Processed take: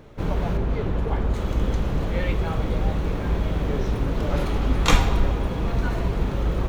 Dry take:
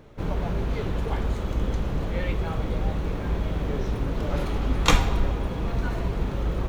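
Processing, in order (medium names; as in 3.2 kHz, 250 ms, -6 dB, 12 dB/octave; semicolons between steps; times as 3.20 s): 0.57–1.34 s: treble shelf 2.7 kHz -10 dB; loudness maximiser +5.5 dB; trim -2.5 dB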